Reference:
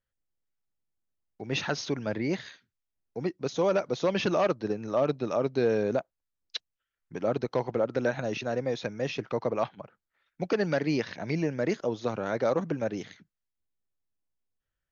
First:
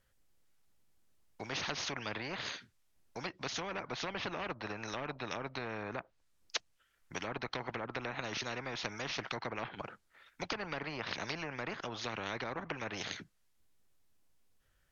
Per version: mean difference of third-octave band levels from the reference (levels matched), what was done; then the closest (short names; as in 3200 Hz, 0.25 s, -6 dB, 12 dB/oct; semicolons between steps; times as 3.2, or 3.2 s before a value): 8.0 dB: treble ducked by the level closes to 1200 Hz, closed at -23 dBFS; spectral compressor 4:1; gain -3 dB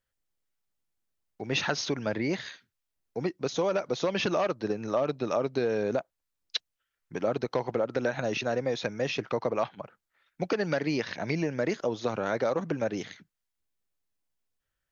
2.0 dB: compressor, threshold -26 dBFS, peak gain reduction 6.5 dB; low shelf 450 Hz -4 dB; gain +4.5 dB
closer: second